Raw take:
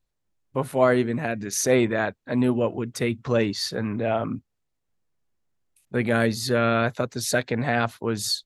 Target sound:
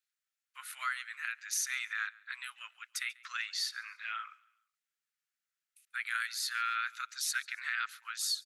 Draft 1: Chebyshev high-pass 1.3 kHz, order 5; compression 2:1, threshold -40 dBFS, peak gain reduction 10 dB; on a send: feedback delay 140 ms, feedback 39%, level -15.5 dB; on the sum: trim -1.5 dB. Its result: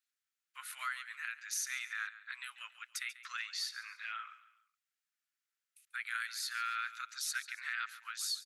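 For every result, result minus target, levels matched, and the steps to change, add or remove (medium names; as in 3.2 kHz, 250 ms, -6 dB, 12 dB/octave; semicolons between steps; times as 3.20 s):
echo-to-direct +8 dB; compression: peak gain reduction +4 dB
change: feedback delay 140 ms, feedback 39%, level -23.5 dB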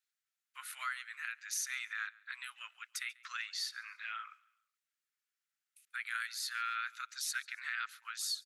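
compression: peak gain reduction +4 dB
change: compression 2:1, threshold -32.5 dBFS, peak gain reduction 6 dB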